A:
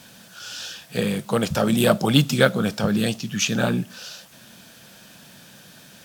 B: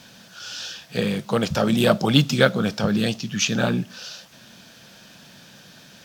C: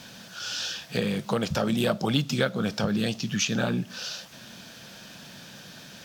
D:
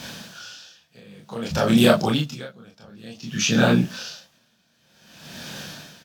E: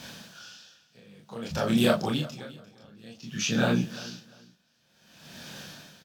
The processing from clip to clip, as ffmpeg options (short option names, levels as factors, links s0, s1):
-af "highshelf=f=7100:t=q:w=1.5:g=-6"
-af "acompressor=threshold=0.0398:ratio=2.5,volume=1.26"
-filter_complex "[0:a]asplit=2[s0][s1];[s1]aecho=0:1:26|39:0.708|0.631[s2];[s0][s2]amix=inputs=2:normalize=0,aeval=exprs='val(0)*pow(10,-30*(0.5-0.5*cos(2*PI*0.54*n/s))/20)':c=same,volume=2.24"
-af "aecho=1:1:347|694:0.119|0.0261,volume=0.447"